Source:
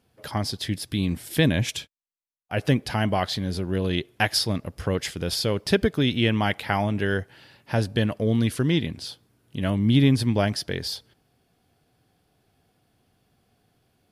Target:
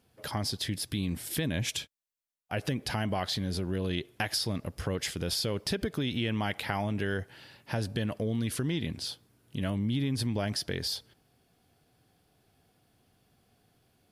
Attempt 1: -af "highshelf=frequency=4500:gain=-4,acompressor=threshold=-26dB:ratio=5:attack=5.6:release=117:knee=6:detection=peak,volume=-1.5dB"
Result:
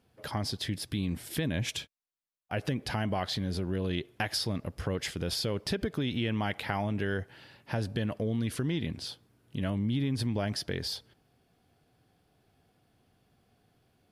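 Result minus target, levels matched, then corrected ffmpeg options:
8,000 Hz band −3.5 dB
-af "highshelf=frequency=4500:gain=3,acompressor=threshold=-26dB:ratio=5:attack=5.6:release=117:knee=6:detection=peak,volume=-1.5dB"

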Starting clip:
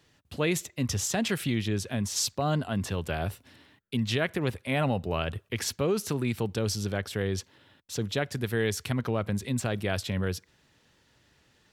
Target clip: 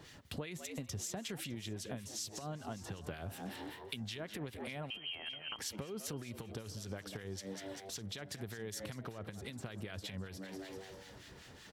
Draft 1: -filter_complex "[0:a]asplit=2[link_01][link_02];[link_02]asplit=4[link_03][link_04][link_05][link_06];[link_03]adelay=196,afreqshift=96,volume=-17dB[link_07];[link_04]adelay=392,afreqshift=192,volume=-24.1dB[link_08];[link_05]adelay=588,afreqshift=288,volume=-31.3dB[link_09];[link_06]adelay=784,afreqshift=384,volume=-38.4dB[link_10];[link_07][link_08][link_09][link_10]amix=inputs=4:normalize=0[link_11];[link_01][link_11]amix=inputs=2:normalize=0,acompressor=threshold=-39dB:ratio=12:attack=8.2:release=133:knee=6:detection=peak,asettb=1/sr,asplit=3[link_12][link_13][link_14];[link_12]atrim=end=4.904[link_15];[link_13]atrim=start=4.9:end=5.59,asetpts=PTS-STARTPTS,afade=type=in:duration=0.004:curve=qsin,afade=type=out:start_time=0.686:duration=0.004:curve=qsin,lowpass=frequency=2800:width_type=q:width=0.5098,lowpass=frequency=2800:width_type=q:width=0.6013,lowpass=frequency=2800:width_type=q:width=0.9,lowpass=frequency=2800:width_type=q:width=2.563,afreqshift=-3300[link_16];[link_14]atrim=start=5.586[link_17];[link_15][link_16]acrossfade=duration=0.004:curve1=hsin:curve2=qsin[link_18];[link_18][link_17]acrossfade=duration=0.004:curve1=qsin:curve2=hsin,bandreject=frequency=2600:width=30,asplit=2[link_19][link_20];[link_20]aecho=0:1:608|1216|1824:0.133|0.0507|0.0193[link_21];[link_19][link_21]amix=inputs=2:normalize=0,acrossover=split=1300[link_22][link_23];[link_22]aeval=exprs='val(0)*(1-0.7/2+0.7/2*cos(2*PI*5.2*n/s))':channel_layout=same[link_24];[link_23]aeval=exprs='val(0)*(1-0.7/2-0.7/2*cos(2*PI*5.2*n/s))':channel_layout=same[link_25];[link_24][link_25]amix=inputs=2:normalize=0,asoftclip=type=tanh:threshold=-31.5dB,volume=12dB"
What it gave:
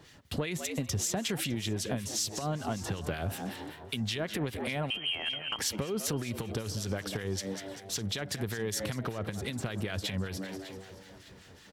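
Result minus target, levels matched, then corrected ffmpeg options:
downward compressor: peak gain reduction −10.5 dB
-filter_complex "[0:a]asplit=2[link_01][link_02];[link_02]asplit=4[link_03][link_04][link_05][link_06];[link_03]adelay=196,afreqshift=96,volume=-17dB[link_07];[link_04]adelay=392,afreqshift=192,volume=-24.1dB[link_08];[link_05]adelay=588,afreqshift=288,volume=-31.3dB[link_09];[link_06]adelay=784,afreqshift=384,volume=-38.4dB[link_10];[link_07][link_08][link_09][link_10]amix=inputs=4:normalize=0[link_11];[link_01][link_11]amix=inputs=2:normalize=0,acompressor=threshold=-50.5dB:ratio=12:attack=8.2:release=133:knee=6:detection=peak,asettb=1/sr,asplit=3[link_12][link_13][link_14];[link_12]atrim=end=4.904[link_15];[link_13]atrim=start=4.9:end=5.59,asetpts=PTS-STARTPTS,afade=type=in:duration=0.004:curve=qsin,afade=type=out:start_time=0.686:duration=0.004:curve=qsin,lowpass=frequency=2800:width_type=q:width=0.5098,lowpass=frequency=2800:width_type=q:width=0.6013,lowpass=frequency=2800:width_type=q:width=0.9,lowpass=frequency=2800:width_type=q:width=2.563,afreqshift=-3300[link_16];[link_14]atrim=start=5.586[link_17];[link_15][link_16]acrossfade=duration=0.004:curve1=hsin:curve2=qsin[link_18];[link_18][link_17]acrossfade=duration=0.004:curve1=qsin:curve2=hsin,bandreject=frequency=2600:width=30,asplit=2[link_19][link_20];[link_20]aecho=0:1:608|1216|1824:0.133|0.0507|0.0193[link_21];[link_19][link_21]amix=inputs=2:normalize=0,acrossover=split=1300[link_22][link_23];[link_22]aeval=exprs='val(0)*(1-0.7/2+0.7/2*cos(2*PI*5.2*n/s))':channel_layout=same[link_24];[link_23]aeval=exprs='val(0)*(1-0.7/2-0.7/2*cos(2*PI*5.2*n/s))':channel_layout=same[link_25];[link_24][link_25]amix=inputs=2:normalize=0,asoftclip=type=tanh:threshold=-31.5dB,volume=12dB"

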